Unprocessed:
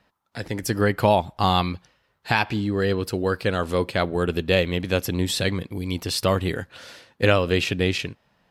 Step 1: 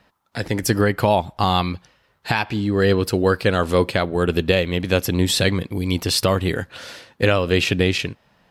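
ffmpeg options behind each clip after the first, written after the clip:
-af "alimiter=limit=0.266:level=0:latency=1:release=479,volume=2"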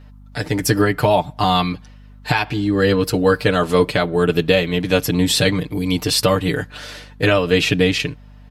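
-af "aecho=1:1:6.7:0.89,aeval=exprs='val(0)+0.00891*(sin(2*PI*50*n/s)+sin(2*PI*2*50*n/s)/2+sin(2*PI*3*50*n/s)/3+sin(2*PI*4*50*n/s)/4+sin(2*PI*5*50*n/s)/5)':c=same"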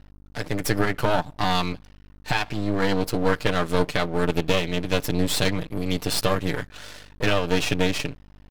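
-af "aeval=exprs='max(val(0),0)':c=same,volume=0.708"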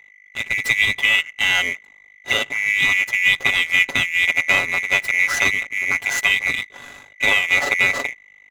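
-filter_complex "[0:a]afftfilt=real='real(if(lt(b,920),b+92*(1-2*mod(floor(b/92),2)),b),0)':imag='imag(if(lt(b,920),b+92*(1-2*mod(floor(b/92),2)),b),0)':win_size=2048:overlap=0.75,asplit=2[s0][s1];[s1]adynamicsmooth=sensitivity=6.5:basefreq=1400,volume=1.26[s2];[s0][s2]amix=inputs=2:normalize=0,volume=0.631"

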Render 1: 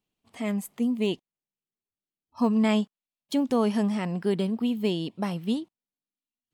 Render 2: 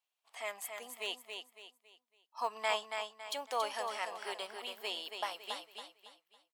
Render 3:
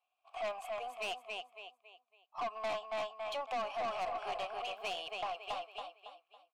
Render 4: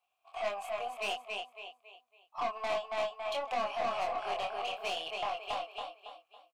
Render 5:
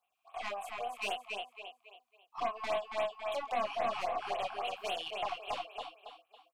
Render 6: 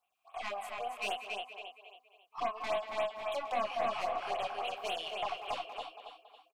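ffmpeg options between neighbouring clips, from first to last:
-filter_complex "[0:a]highpass=f=680:w=0.5412,highpass=f=680:w=1.3066,asplit=2[s0][s1];[s1]aecho=0:1:278|556|834|1112:0.501|0.18|0.065|0.0234[s2];[s0][s2]amix=inputs=2:normalize=0,volume=0.794"
-filter_complex "[0:a]asplit=3[s0][s1][s2];[s0]bandpass=f=730:t=q:w=8,volume=1[s3];[s1]bandpass=f=1090:t=q:w=8,volume=0.501[s4];[s2]bandpass=f=2440:t=q:w=8,volume=0.355[s5];[s3][s4][s5]amix=inputs=3:normalize=0,alimiter=level_in=5.01:limit=0.0631:level=0:latency=1:release=373,volume=0.2,aeval=exprs='(tanh(316*val(0)+0.15)-tanh(0.15))/316':c=same,volume=7.08"
-filter_complex "[0:a]asplit=2[s0][s1];[s1]adelay=25,volume=0.708[s2];[s0][s2]amix=inputs=2:normalize=0,volume=1.26"
-af "afftfilt=real='re*(1-between(b*sr/1024,460*pow(6100/460,0.5+0.5*sin(2*PI*3.7*pts/sr))/1.41,460*pow(6100/460,0.5+0.5*sin(2*PI*3.7*pts/sr))*1.41))':imag='im*(1-between(b*sr/1024,460*pow(6100/460,0.5+0.5*sin(2*PI*3.7*pts/sr))/1.41,460*pow(6100/460,0.5+0.5*sin(2*PI*3.7*pts/sr))*1.41))':win_size=1024:overlap=0.75"
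-filter_complex "[0:a]asplit=2[s0][s1];[s1]adelay=190,highpass=300,lowpass=3400,asoftclip=type=hard:threshold=0.0237,volume=0.355[s2];[s0][s2]amix=inputs=2:normalize=0"

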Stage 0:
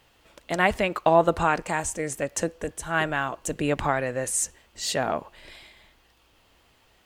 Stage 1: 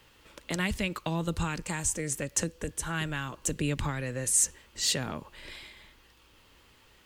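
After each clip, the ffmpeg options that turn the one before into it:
-filter_complex "[0:a]equalizer=f=700:w=4.4:g=-10.5,acrossover=split=220|3000[s0][s1][s2];[s1]acompressor=threshold=0.0141:ratio=6[s3];[s0][s3][s2]amix=inputs=3:normalize=0,volume=1.26"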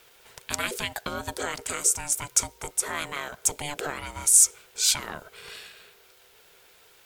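-af "crystalizer=i=2:c=0,equalizer=f=125:t=o:w=1:g=-10,equalizer=f=250:t=o:w=1:g=-6,equalizer=f=1000:t=o:w=1:g=6,aeval=exprs='val(0)*sin(2*PI*440*n/s)':c=same,volume=1.26"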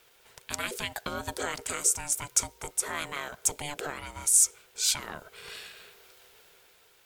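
-af "dynaudnorm=f=130:g=13:m=2.11,volume=0.562"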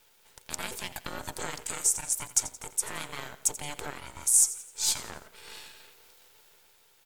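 -filter_complex "[0:a]aecho=1:1:86|172|258|344:0.168|0.0739|0.0325|0.0143,acrossover=split=4300[s0][s1];[s0]aeval=exprs='max(val(0),0)':c=same[s2];[s2][s1]amix=inputs=2:normalize=0"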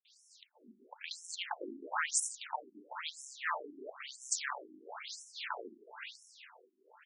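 -filter_complex "[0:a]asplit=2[s0][s1];[s1]highpass=f=720:p=1,volume=11.2,asoftclip=type=tanh:threshold=0.473[s2];[s0][s2]amix=inputs=2:normalize=0,lowpass=f=2800:p=1,volume=0.501,acrossover=split=220|2900[s3][s4][s5];[s5]adelay=50[s6];[s4]adelay=550[s7];[s3][s7][s6]amix=inputs=3:normalize=0,afftfilt=real='re*between(b*sr/1024,260*pow(7700/260,0.5+0.5*sin(2*PI*1*pts/sr))/1.41,260*pow(7700/260,0.5+0.5*sin(2*PI*1*pts/sr))*1.41)':imag='im*between(b*sr/1024,260*pow(7700/260,0.5+0.5*sin(2*PI*1*pts/sr))/1.41,260*pow(7700/260,0.5+0.5*sin(2*PI*1*pts/sr))*1.41)':win_size=1024:overlap=0.75,volume=0.75"

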